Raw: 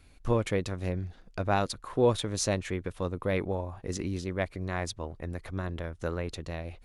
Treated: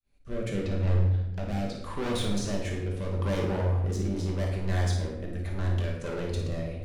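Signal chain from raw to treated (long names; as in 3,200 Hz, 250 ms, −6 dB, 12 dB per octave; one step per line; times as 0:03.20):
fade in at the beginning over 0.82 s
de-essing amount 85%
0:00.49–0:01.76: low-pass filter 3,000 Hz → 5,700 Hz 12 dB per octave
in parallel at 0 dB: brickwall limiter −23.5 dBFS, peak gain reduction 10 dB
on the sum: hard clipping −28.5 dBFS, distortion −5 dB
rotating-speaker cabinet horn 0.8 Hz
on a send: flutter between parallel walls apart 9.4 metres, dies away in 0.38 s
on the sum: rectangular room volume 320 cubic metres, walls mixed, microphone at 1.2 metres
level that may rise only so fast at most 410 dB per second
level −2 dB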